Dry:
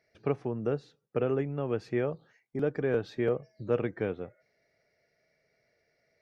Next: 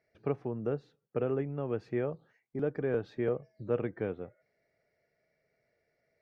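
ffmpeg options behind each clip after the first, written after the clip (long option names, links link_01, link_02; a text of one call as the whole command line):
ffmpeg -i in.wav -af "highshelf=frequency=3500:gain=-11.5,volume=-2.5dB" out.wav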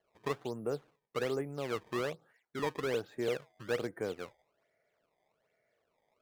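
ffmpeg -i in.wav -filter_complex "[0:a]acrusher=samples=18:mix=1:aa=0.000001:lfo=1:lforange=28.8:lforate=1.2,asplit=2[link_01][link_02];[link_02]highpass=frequency=720:poles=1,volume=11dB,asoftclip=type=tanh:threshold=-17.5dB[link_03];[link_01][link_03]amix=inputs=2:normalize=0,lowpass=frequency=2200:poles=1,volume=-6dB,volume=-3dB" out.wav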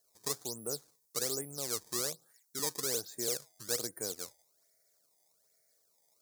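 ffmpeg -i in.wav -af "aexciter=amount=13.7:drive=7.5:freq=4400,volume=-6dB" out.wav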